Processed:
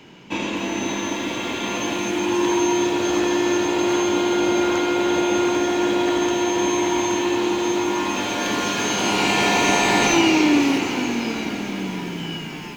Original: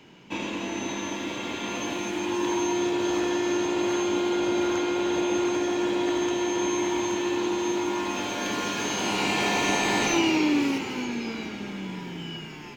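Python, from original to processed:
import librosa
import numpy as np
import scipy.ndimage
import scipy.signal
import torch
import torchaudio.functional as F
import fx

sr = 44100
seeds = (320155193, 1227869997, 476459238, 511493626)

y = fx.echo_crushed(x, sr, ms=256, feedback_pct=80, bits=8, wet_db=-13.5)
y = F.gain(torch.from_numpy(y), 6.0).numpy()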